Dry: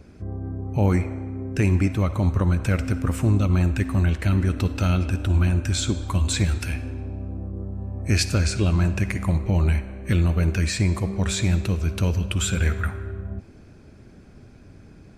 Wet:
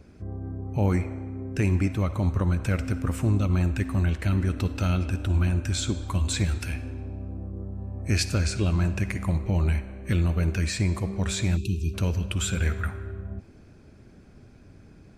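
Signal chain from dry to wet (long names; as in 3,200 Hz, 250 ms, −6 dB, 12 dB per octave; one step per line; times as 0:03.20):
time-frequency box erased 0:11.57–0:11.94, 420–2,400 Hz
level −3.5 dB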